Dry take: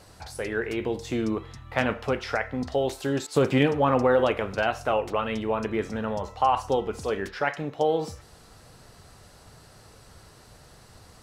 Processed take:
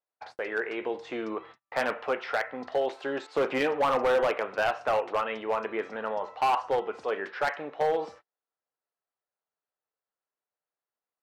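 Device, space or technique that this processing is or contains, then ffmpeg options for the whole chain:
walkie-talkie: -af "highpass=500,lowpass=2400,asoftclip=type=hard:threshold=-21.5dB,agate=range=-41dB:threshold=-48dB:ratio=16:detection=peak,volume=1.5dB"

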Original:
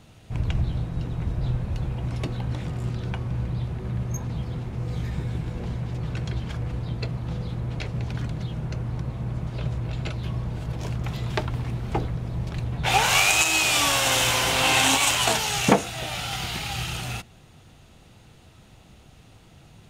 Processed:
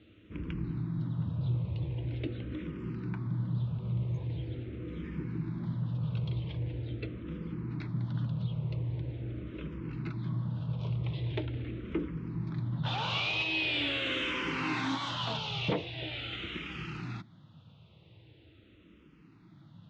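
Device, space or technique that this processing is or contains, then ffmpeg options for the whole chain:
barber-pole phaser into a guitar amplifier: -filter_complex "[0:a]asplit=2[link_01][link_02];[link_02]afreqshift=-0.43[link_03];[link_01][link_03]amix=inputs=2:normalize=1,asoftclip=type=tanh:threshold=-20dB,highpass=80,equalizer=frequency=110:width_type=q:width=4:gain=5,equalizer=frequency=170:width_type=q:width=4:gain=6,equalizer=frequency=310:width_type=q:width=4:gain=10,equalizer=frequency=750:width_type=q:width=4:gain=-10,equalizer=frequency=1700:width_type=q:width=4:gain=-3,equalizer=frequency=3500:width_type=q:width=4:gain=3,lowpass=frequency=3700:width=0.5412,lowpass=frequency=3700:width=1.3066,volume=-5dB"

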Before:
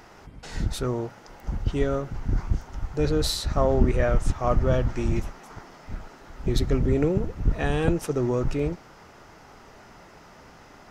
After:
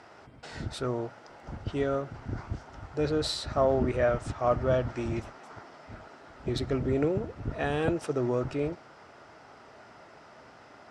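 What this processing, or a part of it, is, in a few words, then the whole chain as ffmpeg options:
car door speaker: -af "highpass=100,equalizer=frequency=180:width_type=q:width=4:gain=-7,equalizer=frequency=640:width_type=q:width=4:gain=5,equalizer=frequency=1400:width_type=q:width=4:gain=3,equalizer=frequency=6500:width_type=q:width=4:gain=-7,lowpass=frequency=8800:width=0.5412,lowpass=frequency=8800:width=1.3066,volume=-3.5dB"

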